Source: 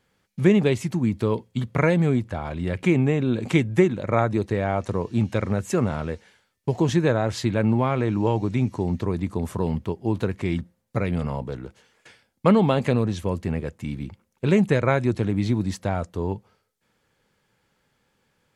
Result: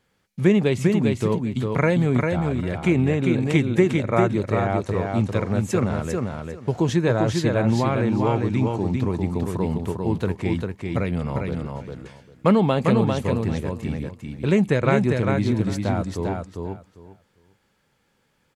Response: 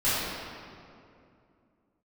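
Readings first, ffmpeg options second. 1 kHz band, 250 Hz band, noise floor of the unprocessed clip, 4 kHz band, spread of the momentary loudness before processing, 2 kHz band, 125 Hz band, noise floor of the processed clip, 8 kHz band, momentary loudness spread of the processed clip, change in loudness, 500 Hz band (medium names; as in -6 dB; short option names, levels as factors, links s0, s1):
+1.5 dB, +1.5 dB, -72 dBFS, +1.5 dB, 11 LU, +1.5 dB, +1.5 dB, -68 dBFS, +1.5 dB, 10 LU, +1.5 dB, +1.5 dB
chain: -af "aecho=1:1:399|798|1197:0.631|0.114|0.0204"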